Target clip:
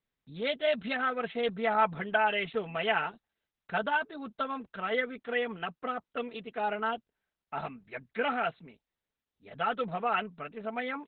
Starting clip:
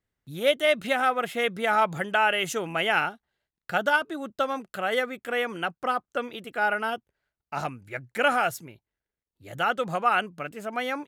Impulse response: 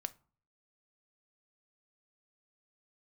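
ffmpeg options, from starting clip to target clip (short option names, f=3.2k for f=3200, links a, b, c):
-filter_complex "[0:a]acrossover=split=6200[a][b];[b]acompressor=threshold=-54dB:ratio=4:attack=1:release=60[c];[a][c]amix=inputs=2:normalize=0,aecho=1:1:4.5:0.75,volume=-6dB" -ar 48000 -c:a libopus -b:a 8k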